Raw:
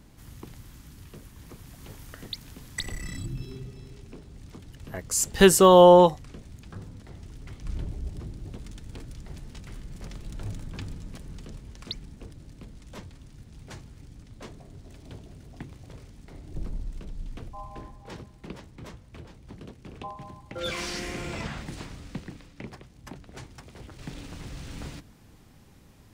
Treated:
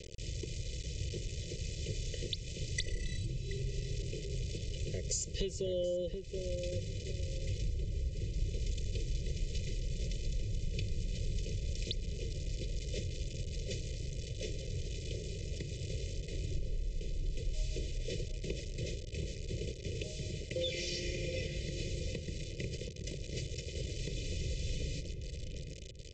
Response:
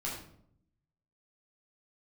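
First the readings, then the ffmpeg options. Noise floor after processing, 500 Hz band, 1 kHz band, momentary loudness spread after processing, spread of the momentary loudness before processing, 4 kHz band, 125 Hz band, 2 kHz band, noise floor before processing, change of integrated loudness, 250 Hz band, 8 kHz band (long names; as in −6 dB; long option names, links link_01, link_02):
−44 dBFS, −16.0 dB, below −40 dB, 5 LU, 25 LU, −5.5 dB, −1.0 dB, −10.0 dB, −53 dBFS, −17.0 dB, −13.5 dB, −9.5 dB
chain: -filter_complex "[0:a]aresample=16000,acrusher=bits=7:mix=0:aa=0.000001,aresample=44100,asuperstop=centerf=1100:order=8:qfactor=0.65,acompressor=threshold=-39dB:ratio=16,aecho=1:1:2:0.89,asplit=2[link_01][link_02];[link_02]adelay=727,lowpass=frequency=930:poles=1,volume=-5dB,asplit=2[link_03][link_04];[link_04]adelay=727,lowpass=frequency=930:poles=1,volume=0.32,asplit=2[link_05][link_06];[link_06]adelay=727,lowpass=frequency=930:poles=1,volume=0.32,asplit=2[link_07][link_08];[link_08]adelay=727,lowpass=frequency=930:poles=1,volume=0.32[link_09];[link_01][link_03][link_05][link_07][link_09]amix=inputs=5:normalize=0,volume=2.5dB"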